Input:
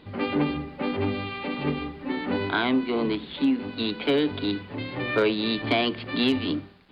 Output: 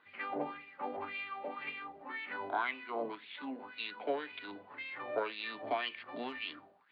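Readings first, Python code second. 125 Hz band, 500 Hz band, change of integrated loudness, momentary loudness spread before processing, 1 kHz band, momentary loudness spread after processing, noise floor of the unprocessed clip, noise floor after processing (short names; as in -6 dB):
-29.5 dB, -12.5 dB, -13.5 dB, 7 LU, -6.5 dB, 8 LU, -44 dBFS, -60 dBFS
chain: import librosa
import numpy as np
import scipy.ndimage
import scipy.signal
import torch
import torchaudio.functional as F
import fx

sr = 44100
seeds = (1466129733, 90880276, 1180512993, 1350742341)

y = fx.wah_lfo(x, sr, hz=1.9, low_hz=630.0, high_hz=2500.0, q=4.7)
y = F.gain(torch.from_numpy(y), 1.0).numpy()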